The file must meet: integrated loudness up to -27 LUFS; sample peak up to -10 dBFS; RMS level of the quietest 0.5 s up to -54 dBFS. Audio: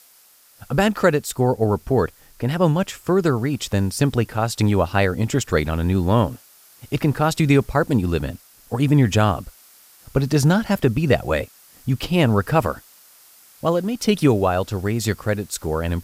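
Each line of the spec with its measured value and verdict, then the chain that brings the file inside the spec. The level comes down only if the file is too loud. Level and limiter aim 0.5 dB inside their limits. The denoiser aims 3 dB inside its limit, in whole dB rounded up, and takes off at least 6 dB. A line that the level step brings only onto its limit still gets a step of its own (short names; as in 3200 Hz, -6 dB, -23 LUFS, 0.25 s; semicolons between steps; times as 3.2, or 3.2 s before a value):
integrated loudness -20.5 LUFS: fail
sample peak -4.0 dBFS: fail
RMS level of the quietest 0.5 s -53 dBFS: fail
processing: gain -7 dB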